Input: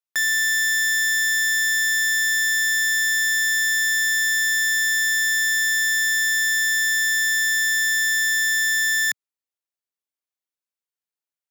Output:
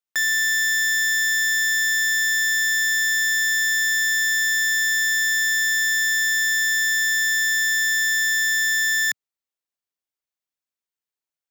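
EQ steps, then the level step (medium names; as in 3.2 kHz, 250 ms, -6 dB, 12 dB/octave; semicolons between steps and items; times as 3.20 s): peaking EQ 11 kHz -5 dB 0.24 oct; 0.0 dB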